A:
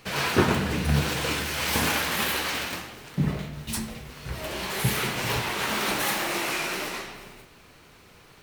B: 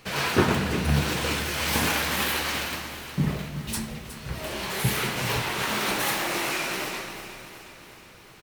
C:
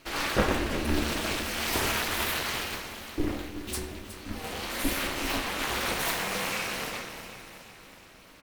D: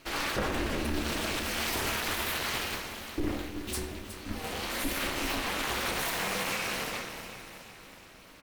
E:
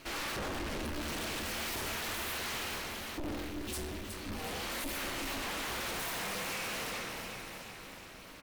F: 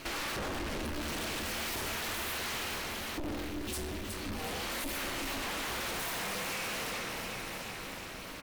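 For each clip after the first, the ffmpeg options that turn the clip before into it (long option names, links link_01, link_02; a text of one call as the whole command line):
ffmpeg -i in.wav -af "aecho=1:1:366|732|1098|1464|1830|2196|2562:0.224|0.134|0.0806|0.0484|0.029|0.0174|0.0104" out.wav
ffmpeg -i in.wav -af "bandreject=frequency=76.47:width_type=h:width=4,bandreject=frequency=152.94:width_type=h:width=4,bandreject=frequency=229.41:width_type=h:width=4,bandreject=frequency=305.88:width_type=h:width=4,bandreject=frequency=382.35:width_type=h:width=4,bandreject=frequency=458.82:width_type=h:width=4,bandreject=frequency=535.29:width_type=h:width=4,bandreject=frequency=611.76:width_type=h:width=4,bandreject=frequency=688.23:width_type=h:width=4,bandreject=frequency=764.7:width_type=h:width=4,bandreject=frequency=841.17:width_type=h:width=4,bandreject=frequency=917.64:width_type=h:width=4,bandreject=frequency=994.11:width_type=h:width=4,bandreject=frequency=1070.58:width_type=h:width=4,bandreject=frequency=1147.05:width_type=h:width=4,bandreject=frequency=1223.52:width_type=h:width=4,bandreject=frequency=1299.99:width_type=h:width=4,bandreject=frequency=1376.46:width_type=h:width=4,bandreject=frequency=1452.93:width_type=h:width=4,bandreject=frequency=1529.4:width_type=h:width=4,bandreject=frequency=1605.87:width_type=h:width=4,bandreject=frequency=1682.34:width_type=h:width=4,bandreject=frequency=1758.81:width_type=h:width=4,bandreject=frequency=1835.28:width_type=h:width=4,bandreject=frequency=1911.75:width_type=h:width=4,bandreject=frequency=1988.22:width_type=h:width=4,bandreject=frequency=2064.69:width_type=h:width=4,bandreject=frequency=2141.16:width_type=h:width=4,bandreject=frequency=2217.63:width_type=h:width=4,bandreject=frequency=2294.1:width_type=h:width=4,bandreject=frequency=2370.57:width_type=h:width=4,bandreject=frequency=2447.04:width_type=h:width=4,bandreject=frequency=2523.51:width_type=h:width=4,bandreject=frequency=2599.98:width_type=h:width=4,bandreject=frequency=2676.45:width_type=h:width=4,bandreject=frequency=2752.92:width_type=h:width=4,bandreject=frequency=2829.39:width_type=h:width=4,bandreject=frequency=2905.86:width_type=h:width=4,bandreject=frequency=2982.33:width_type=h:width=4,aeval=exprs='val(0)*sin(2*PI*150*n/s)':channel_layout=same" out.wav
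ffmpeg -i in.wav -af "alimiter=limit=-20dB:level=0:latency=1:release=61" out.wav
ffmpeg -i in.wav -af "asoftclip=type=tanh:threshold=-37dB,volume=2.5dB" out.wav
ffmpeg -i in.wav -af "acompressor=threshold=-43dB:ratio=4,volume=7dB" out.wav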